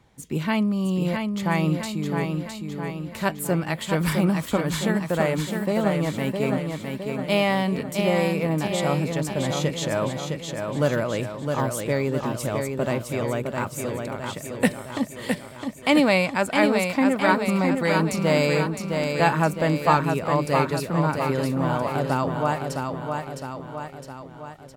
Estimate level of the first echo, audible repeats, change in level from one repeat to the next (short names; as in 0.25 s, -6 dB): -5.0 dB, 5, -5.0 dB